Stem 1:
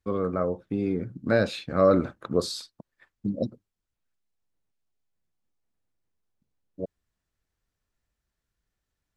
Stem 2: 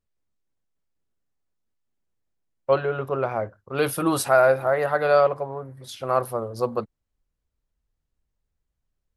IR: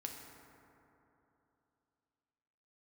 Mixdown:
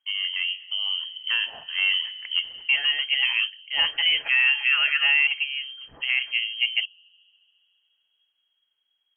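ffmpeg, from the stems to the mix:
-filter_complex "[0:a]alimiter=limit=0.266:level=0:latency=1:release=382,aeval=exprs='0.266*(cos(1*acos(clip(val(0)/0.266,-1,1)))-cos(1*PI/2))+0.0168*(cos(3*acos(clip(val(0)/0.266,-1,1)))-cos(3*PI/2))+0.0133*(cos(5*acos(clip(val(0)/0.266,-1,1)))-cos(5*PI/2))':c=same,volume=0.75,asplit=2[s0][s1];[s1]volume=0.335[s2];[1:a]volume=1.26[s3];[2:a]atrim=start_sample=2205[s4];[s2][s4]afir=irnorm=-1:irlink=0[s5];[s0][s3][s5]amix=inputs=3:normalize=0,lowpass=f=2800:t=q:w=0.5098,lowpass=f=2800:t=q:w=0.6013,lowpass=f=2800:t=q:w=0.9,lowpass=f=2800:t=q:w=2.563,afreqshift=-3300,alimiter=limit=0.266:level=0:latency=1:release=73"

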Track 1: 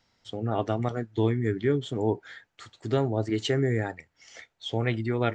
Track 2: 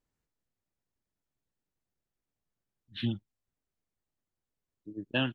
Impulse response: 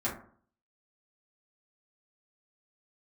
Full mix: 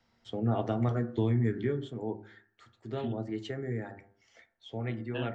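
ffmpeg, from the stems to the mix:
-filter_complex "[0:a]bandreject=f=98.83:t=h:w=4,bandreject=f=197.66:t=h:w=4,bandreject=f=296.49:t=h:w=4,bandreject=f=395.32:t=h:w=4,bandreject=f=494.15:t=h:w=4,bandreject=f=592.98:t=h:w=4,bandreject=f=691.81:t=h:w=4,bandreject=f=790.64:t=h:w=4,bandreject=f=889.47:t=h:w=4,bandreject=f=988.3:t=h:w=4,bandreject=f=1087.13:t=h:w=4,bandreject=f=1185.96:t=h:w=4,bandreject=f=1284.79:t=h:w=4,bandreject=f=1383.62:t=h:w=4,bandreject=f=1482.45:t=h:w=4,bandreject=f=1581.28:t=h:w=4,bandreject=f=1680.11:t=h:w=4,bandreject=f=1778.94:t=h:w=4,volume=0.841,afade=t=out:st=1.44:d=0.54:silence=0.334965,asplit=2[s0][s1];[s1]volume=0.2[s2];[1:a]volume=0.316,asplit=2[s3][s4];[s4]volume=0.266[s5];[2:a]atrim=start_sample=2205[s6];[s2][s5]amix=inputs=2:normalize=0[s7];[s7][s6]afir=irnorm=-1:irlink=0[s8];[s0][s3][s8]amix=inputs=3:normalize=0,highshelf=f=3800:g=-10.5,acrossover=split=140|3000[s9][s10][s11];[s10]acompressor=threshold=0.0447:ratio=6[s12];[s9][s12][s11]amix=inputs=3:normalize=0"

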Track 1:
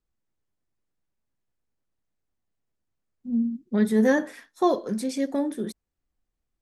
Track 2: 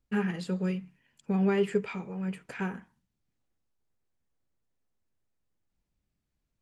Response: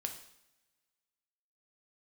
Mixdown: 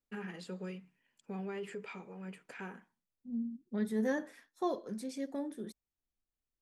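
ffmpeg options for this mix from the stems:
-filter_complex "[0:a]volume=0.237[s0];[1:a]highpass=240,alimiter=level_in=1.41:limit=0.0631:level=0:latency=1:release=45,volume=0.708,volume=0.447,afade=t=out:st=2.82:d=0.31:silence=0.281838[s1];[s0][s1]amix=inputs=2:normalize=0"

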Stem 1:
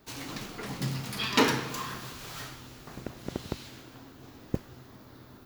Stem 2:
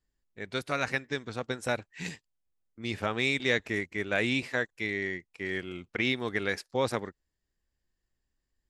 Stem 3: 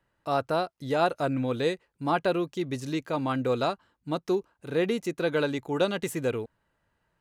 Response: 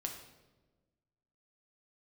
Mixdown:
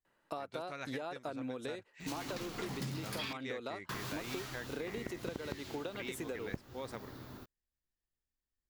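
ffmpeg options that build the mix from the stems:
-filter_complex "[0:a]adelay=2000,volume=1.19,asplit=3[s0][s1][s2];[s0]atrim=end=3.33,asetpts=PTS-STARTPTS,afade=t=out:st=3.326:d=0.004:c=hsin[s3];[s1]atrim=start=3.33:end=3.89,asetpts=PTS-STARTPTS,volume=0[s4];[s2]atrim=start=3.89,asetpts=PTS-STARTPTS,afade=t=in:d=0.004:c=hsin[s5];[s3][s4][s5]concat=n=3:v=0:a=1[s6];[1:a]volume=0.251[s7];[2:a]highpass=220,acompressor=threshold=0.02:ratio=6,adelay=50,volume=1.12[s8];[s6][s7][s8]amix=inputs=3:normalize=0,acompressor=threshold=0.0141:ratio=6"

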